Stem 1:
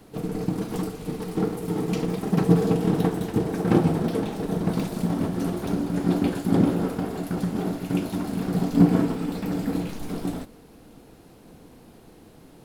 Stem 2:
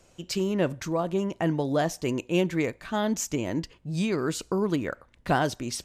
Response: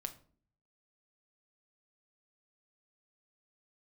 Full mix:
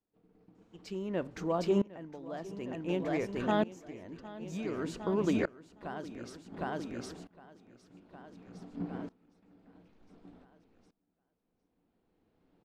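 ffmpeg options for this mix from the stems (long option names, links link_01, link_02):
-filter_complex "[0:a]lowpass=3300,volume=-18dB,asplit=2[link_01][link_02];[link_02]volume=-19.5dB[link_03];[1:a]lowpass=frequency=2400:poles=1,adelay=550,volume=-0.5dB,asplit=2[link_04][link_05];[link_05]volume=-5dB[link_06];[link_03][link_06]amix=inputs=2:normalize=0,aecho=0:1:760|1520|2280|3040|3800|4560|5320:1|0.48|0.23|0.111|0.0531|0.0255|0.0122[link_07];[link_01][link_04][link_07]amix=inputs=3:normalize=0,equalizer=frequency=140:width=5.2:gain=-9.5,aeval=exprs='val(0)*pow(10,-22*if(lt(mod(-0.55*n/s,1),2*abs(-0.55)/1000),1-mod(-0.55*n/s,1)/(2*abs(-0.55)/1000),(mod(-0.55*n/s,1)-2*abs(-0.55)/1000)/(1-2*abs(-0.55)/1000))/20)':channel_layout=same"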